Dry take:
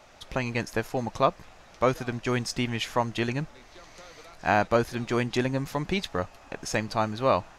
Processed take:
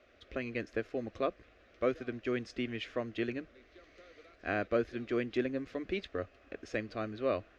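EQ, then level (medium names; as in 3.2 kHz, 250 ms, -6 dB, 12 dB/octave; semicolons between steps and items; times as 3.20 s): high-pass 48 Hz; low-pass 2.4 kHz 12 dB/octave; static phaser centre 370 Hz, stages 4; -4.0 dB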